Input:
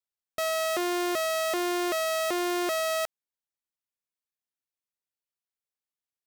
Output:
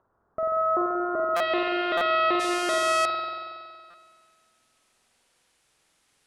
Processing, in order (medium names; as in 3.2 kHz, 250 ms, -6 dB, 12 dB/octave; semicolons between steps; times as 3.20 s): steep low-pass 1.4 kHz 48 dB/octave, from 1.35 s 4 kHz, from 2.39 s 11 kHz; upward compressor, threshold -52 dBFS; spring tank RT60 2 s, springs 46 ms, chirp 35 ms, DRR 0 dB; buffer glitch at 1.36/1.97/3.90 s, samples 256, times 6; trim +2.5 dB